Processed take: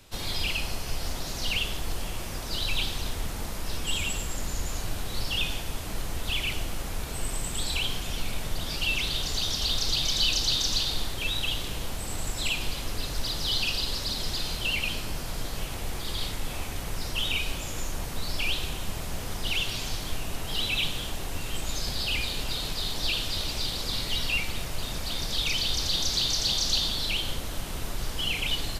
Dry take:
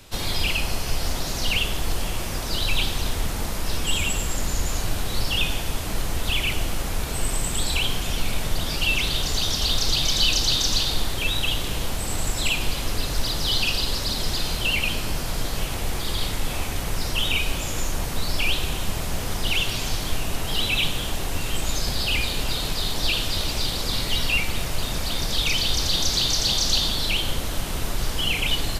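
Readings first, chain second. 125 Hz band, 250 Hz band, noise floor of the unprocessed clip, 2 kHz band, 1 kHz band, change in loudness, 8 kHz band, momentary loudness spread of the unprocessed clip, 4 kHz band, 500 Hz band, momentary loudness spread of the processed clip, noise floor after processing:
-6.5 dB, -6.5 dB, -28 dBFS, -5.5 dB, -6.5 dB, -5.0 dB, -5.5 dB, 8 LU, -4.0 dB, -6.5 dB, 10 LU, -35 dBFS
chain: dynamic EQ 4100 Hz, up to +3 dB, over -32 dBFS, Q 1.1; gain -6.5 dB

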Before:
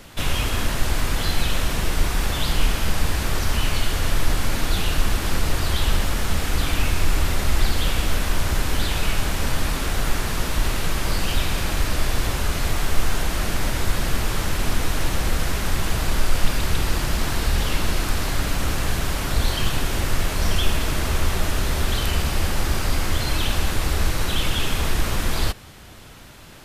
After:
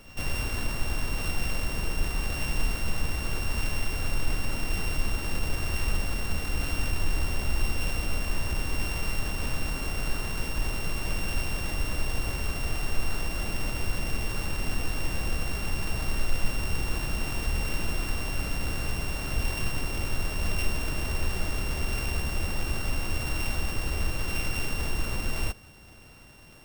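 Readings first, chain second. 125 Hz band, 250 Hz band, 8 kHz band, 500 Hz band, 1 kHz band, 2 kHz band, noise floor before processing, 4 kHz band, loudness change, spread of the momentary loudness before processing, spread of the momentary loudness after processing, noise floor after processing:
-7.5 dB, -7.5 dB, -8.5 dB, -8.0 dB, -10.0 dB, -6.0 dB, -27 dBFS, -9.5 dB, -7.0 dB, 2 LU, 2 LU, -35 dBFS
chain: sample sorter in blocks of 16 samples; pre-echo 0.106 s -18 dB; gain -7.5 dB

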